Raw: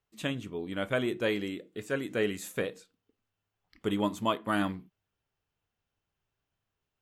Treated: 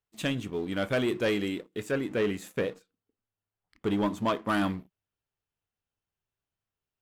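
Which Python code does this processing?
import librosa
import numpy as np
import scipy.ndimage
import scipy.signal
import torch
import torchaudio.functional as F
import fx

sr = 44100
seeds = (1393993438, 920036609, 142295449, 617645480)

y = fx.high_shelf(x, sr, hz=3400.0, db=-10.0, at=(1.91, 4.49))
y = fx.leveller(y, sr, passes=2)
y = y * 10.0 ** (-3.0 / 20.0)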